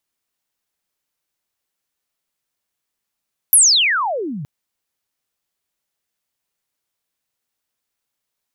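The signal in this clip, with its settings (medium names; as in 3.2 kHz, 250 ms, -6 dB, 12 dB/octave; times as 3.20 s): sweep logarithmic 12 kHz -> 130 Hz -6 dBFS -> -25.5 dBFS 0.92 s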